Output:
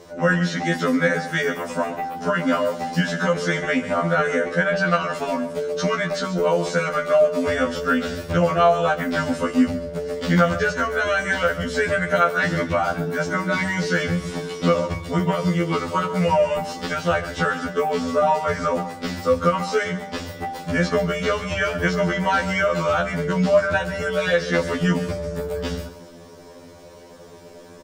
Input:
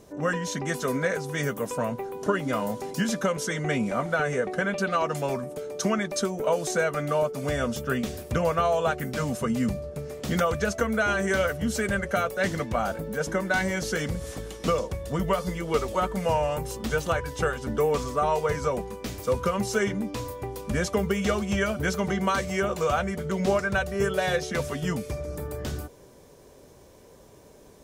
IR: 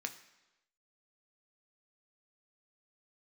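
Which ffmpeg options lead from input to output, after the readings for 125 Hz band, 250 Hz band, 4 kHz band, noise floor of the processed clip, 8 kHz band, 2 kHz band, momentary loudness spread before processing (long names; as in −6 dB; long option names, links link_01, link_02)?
+5.0 dB, +5.5 dB, +5.5 dB, −43 dBFS, −1.5 dB, +7.0 dB, 7 LU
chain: -filter_complex "[0:a]acompressor=threshold=-27dB:ratio=2.5,equalizer=frequency=12000:width=1.5:gain=-13.5,asplit=2[link_01][link_02];[1:a]atrim=start_sample=2205,asetrate=35721,aresample=44100[link_03];[link_02][link_03]afir=irnorm=-1:irlink=0,volume=0.5dB[link_04];[link_01][link_04]amix=inputs=2:normalize=0,acrossover=split=4900[link_05][link_06];[link_06]acompressor=threshold=-45dB:ratio=4:attack=1:release=60[link_07];[link_05][link_07]amix=inputs=2:normalize=0,aecho=1:1:139:0.178,afftfilt=real='re*2*eq(mod(b,4),0)':imag='im*2*eq(mod(b,4),0)':win_size=2048:overlap=0.75,volume=6dB"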